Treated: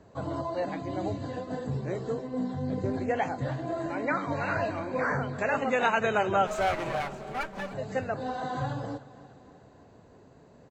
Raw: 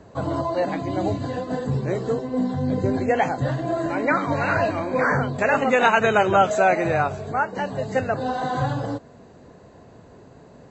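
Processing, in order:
0:06.47–0:07.74: lower of the sound and its delayed copy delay 5.1 ms
repeating echo 302 ms, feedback 56%, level −18.5 dB
0:02.68–0:03.84: highs frequency-modulated by the lows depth 0.12 ms
level −8 dB

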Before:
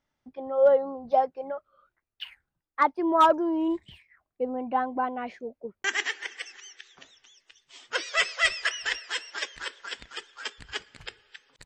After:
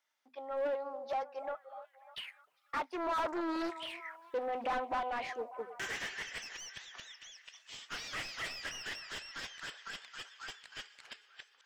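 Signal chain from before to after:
source passing by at 0:04.27, 6 m/s, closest 5.4 metres
first difference
mains-hum notches 50/100/150/200/250 Hz
in parallel at −1 dB: downward compressor, threshold −60 dBFS, peak gain reduction 24.5 dB
on the sum: floating-point word with a short mantissa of 4 bits
mid-hump overdrive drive 32 dB, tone 1,000 Hz, clips at −24.5 dBFS
echo through a band-pass that steps 297 ms, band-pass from 580 Hz, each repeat 0.7 octaves, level −11 dB
highs frequency-modulated by the lows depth 0.33 ms
level +1 dB

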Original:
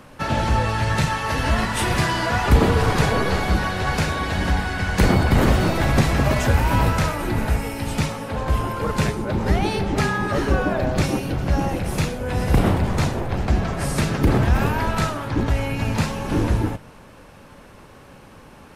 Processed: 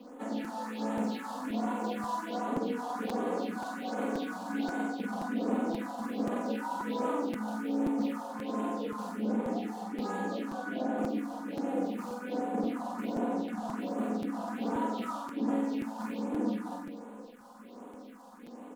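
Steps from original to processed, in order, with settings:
running median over 25 samples
Chebyshev high-pass filter 210 Hz, order 6
surface crackle 560 per second −51 dBFS
reversed playback
downward compressor, threshold −31 dBFS, peak gain reduction 15 dB
reversed playback
high-shelf EQ 11,000 Hz −6 dB
on a send: flutter between parallel walls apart 8 metres, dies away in 0.89 s
on the sum: all-pass phaser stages 4, 1.3 Hz, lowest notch 360–4,900 Hz
comb filter 4.1 ms, depth 79%
regular buffer underruns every 0.53 s, samples 256, repeat, from 0:00.44
level −3.5 dB

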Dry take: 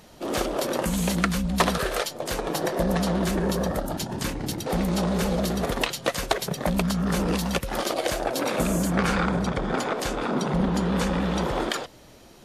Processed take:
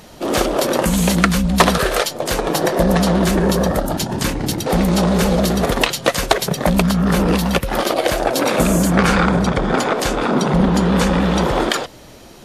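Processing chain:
0:06.81–0:08.18: dynamic equaliser 6,900 Hz, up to −5 dB, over −44 dBFS, Q 0.92
level +9 dB

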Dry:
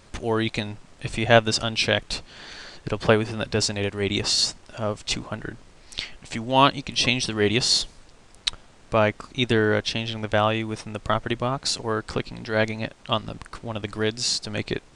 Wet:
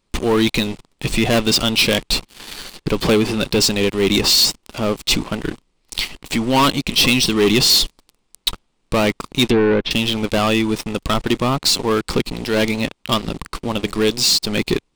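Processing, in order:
leveller curve on the samples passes 5
graphic EQ with 15 bands 100 Hz −11 dB, 630 Hz −7 dB, 1,600 Hz −8 dB, 6,300 Hz −4 dB
0:09.46–0:09.91: treble cut that deepens with the level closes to 1,900 Hz, closed at −8.5 dBFS
level −4.5 dB

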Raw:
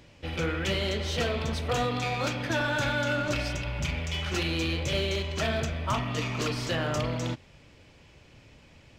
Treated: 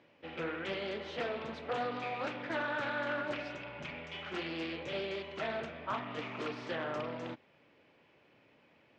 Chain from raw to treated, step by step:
band-pass filter 260–2,500 Hz
highs frequency-modulated by the lows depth 0.25 ms
level −6 dB

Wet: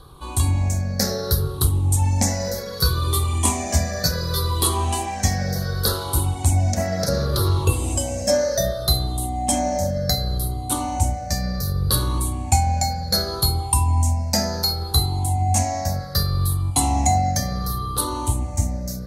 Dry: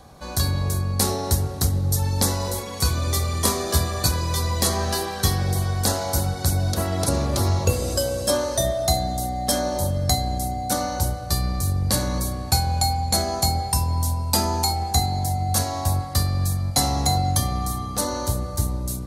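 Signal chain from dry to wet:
rippled gain that drifts along the octave scale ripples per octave 0.62, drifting −0.67 Hz, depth 16 dB
low-shelf EQ 61 Hz +6.5 dB
level −2.5 dB

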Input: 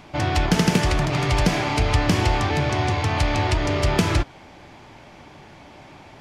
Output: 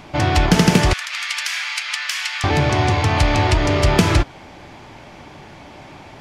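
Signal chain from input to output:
0:00.93–0:02.44: high-pass filter 1,500 Hz 24 dB per octave
level +5 dB

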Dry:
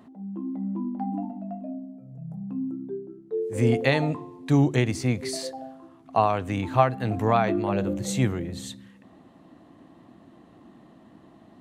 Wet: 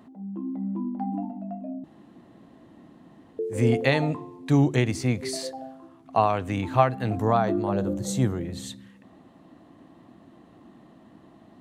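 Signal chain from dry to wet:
0:01.84–0:03.39: fill with room tone
0:07.17–0:08.40: parametric band 2,400 Hz −11.5 dB 0.74 octaves

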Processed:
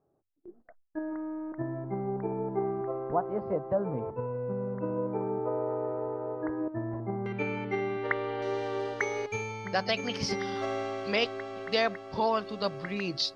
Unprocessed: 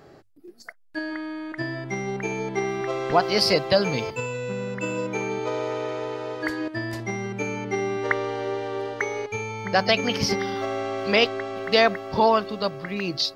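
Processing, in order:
low-pass filter 1,100 Hz 24 dB per octave, from 0:07.26 3,600 Hz, from 0:08.42 9,500 Hz
noise gate with hold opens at −37 dBFS
speech leveller within 3 dB 0.5 s
level −6 dB

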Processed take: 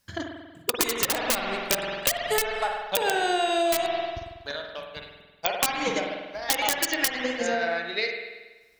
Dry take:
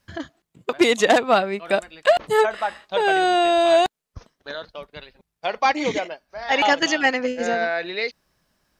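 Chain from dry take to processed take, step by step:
transient designer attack +5 dB, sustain −6 dB
wrap-around overflow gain 7.5 dB
high-shelf EQ 4,200 Hz +11.5 dB
on a send at −2.5 dB: convolution reverb RT60 1.2 s, pre-delay 47 ms
on the sum: downward compressor 12 to 1, threshold −14 dBFS, peak gain reduction 12.5 dB
level −6 dB

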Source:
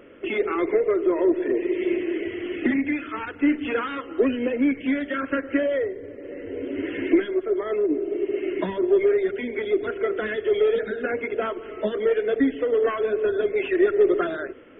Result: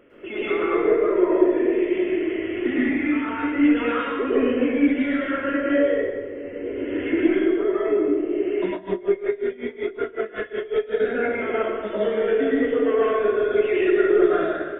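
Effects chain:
dense smooth reverb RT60 1.3 s, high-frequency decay 0.8×, pre-delay 95 ms, DRR −9 dB
0:08.73–0:11.00: tremolo with a sine in dB 5.4 Hz, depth 21 dB
level −6.5 dB

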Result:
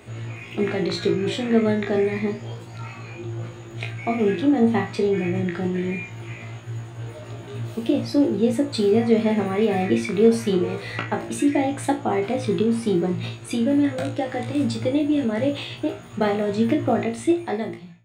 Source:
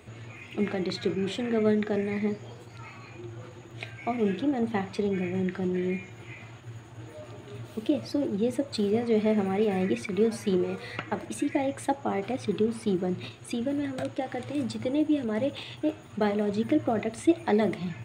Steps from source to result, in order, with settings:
fade-out on the ending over 1.20 s
flutter between parallel walls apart 3 metres, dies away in 0.26 s
level +4.5 dB

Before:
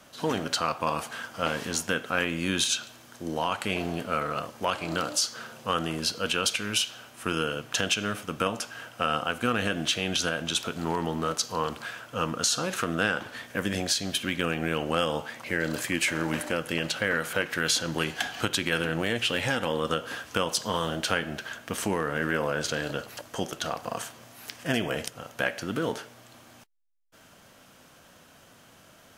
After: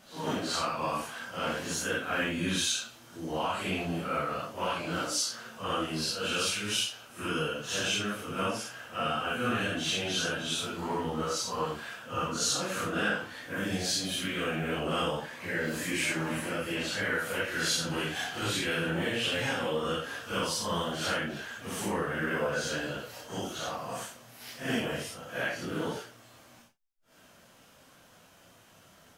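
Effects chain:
random phases in long frames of 200 ms
level −3 dB

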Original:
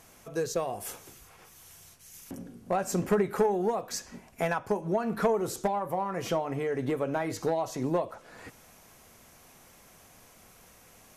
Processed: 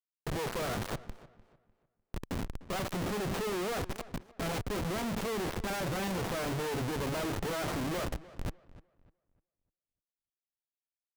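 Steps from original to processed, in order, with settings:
comparator with hysteresis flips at −39 dBFS
on a send: feedback echo with a low-pass in the loop 300 ms, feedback 30%, low-pass 3,000 Hz, level −18 dB
on the sum: windowed peak hold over 17 samples
level −1 dB

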